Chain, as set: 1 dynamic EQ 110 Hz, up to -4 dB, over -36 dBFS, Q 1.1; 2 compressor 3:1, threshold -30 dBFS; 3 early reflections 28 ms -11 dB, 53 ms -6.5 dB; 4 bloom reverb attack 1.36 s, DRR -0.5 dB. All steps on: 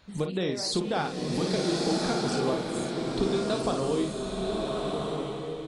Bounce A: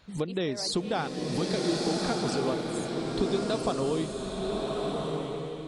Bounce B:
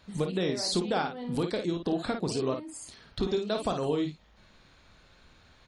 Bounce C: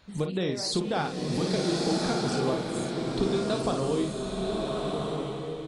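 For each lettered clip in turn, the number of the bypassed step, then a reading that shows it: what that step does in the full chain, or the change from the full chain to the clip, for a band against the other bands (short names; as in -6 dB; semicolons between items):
3, echo-to-direct 2.5 dB to 0.5 dB; 4, echo-to-direct 2.5 dB to -5.0 dB; 1, 125 Hz band +2.0 dB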